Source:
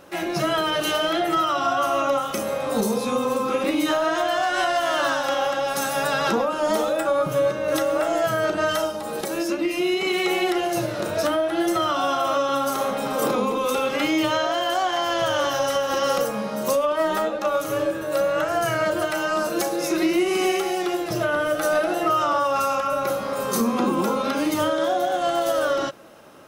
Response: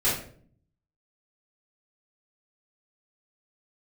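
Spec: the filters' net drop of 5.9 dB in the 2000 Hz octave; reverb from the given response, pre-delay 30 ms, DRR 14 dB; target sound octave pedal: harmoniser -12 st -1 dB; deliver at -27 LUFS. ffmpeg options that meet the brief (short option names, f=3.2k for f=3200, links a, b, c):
-filter_complex "[0:a]equalizer=f=2k:t=o:g=-8.5,asplit=2[a][b];[1:a]atrim=start_sample=2205,adelay=30[c];[b][c]afir=irnorm=-1:irlink=0,volume=-26.5dB[d];[a][d]amix=inputs=2:normalize=0,asplit=2[e][f];[f]asetrate=22050,aresample=44100,atempo=2,volume=-1dB[g];[e][g]amix=inputs=2:normalize=0,volume=-5.5dB"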